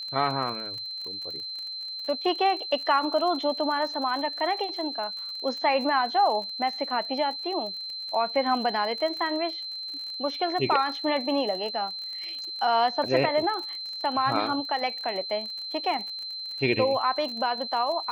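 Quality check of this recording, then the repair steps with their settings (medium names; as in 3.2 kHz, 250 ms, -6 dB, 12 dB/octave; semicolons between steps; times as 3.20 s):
crackle 39 per s -34 dBFS
whine 4.1 kHz -33 dBFS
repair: de-click; band-stop 4.1 kHz, Q 30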